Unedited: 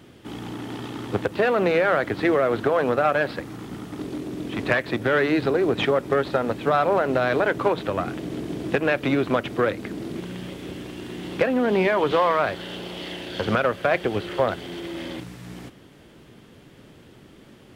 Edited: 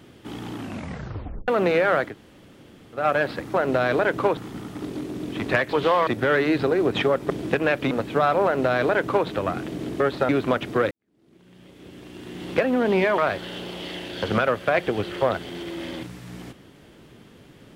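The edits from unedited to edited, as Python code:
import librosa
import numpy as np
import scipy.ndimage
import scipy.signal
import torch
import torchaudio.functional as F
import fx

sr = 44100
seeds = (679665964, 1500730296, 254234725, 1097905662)

y = fx.edit(x, sr, fx.tape_stop(start_s=0.55, length_s=0.93),
    fx.room_tone_fill(start_s=2.08, length_s=0.92, crossfade_s=0.16),
    fx.swap(start_s=6.13, length_s=0.29, other_s=8.51, other_length_s=0.61),
    fx.duplicate(start_s=6.95, length_s=0.83, to_s=3.54),
    fx.fade_in_span(start_s=9.74, length_s=1.65, curve='qua'),
    fx.move(start_s=12.01, length_s=0.34, to_s=4.9), tone=tone)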